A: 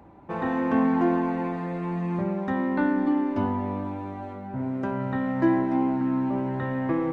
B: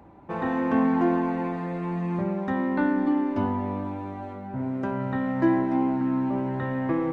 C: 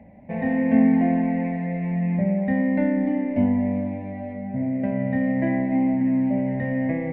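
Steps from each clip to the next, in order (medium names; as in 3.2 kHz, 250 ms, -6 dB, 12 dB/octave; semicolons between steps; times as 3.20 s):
no audible change
FFT filter 140 Hz 0 dB, 240 Hz +8 dB, 340 Hz -15 dB, 610 Hz +6 dB, 1.3 kHz -27 dB, 2 kHz +8 dB, 3.4 kHz -13 dB, 6.1 kHz -20 dB; trim +2.5 dB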